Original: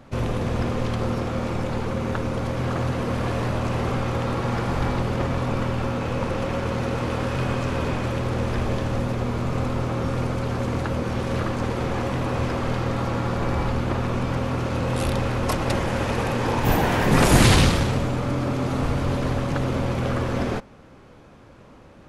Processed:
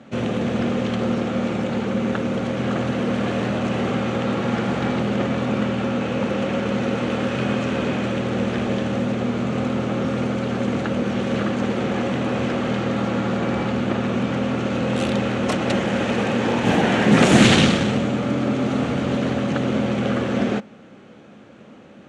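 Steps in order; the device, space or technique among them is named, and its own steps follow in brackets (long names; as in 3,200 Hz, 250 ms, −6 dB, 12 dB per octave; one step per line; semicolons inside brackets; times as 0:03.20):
full-range speaker at full volume (highs frequency-modulated by the lows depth 0.19 ms; loudspeaker in its box 170–7,900 Hz, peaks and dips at 210 Hz +8 dB, 1,000 Hz −8 dB, 3,000 Hz +3 dB, 5,000 Hz −7 dB)
level +3.5 dB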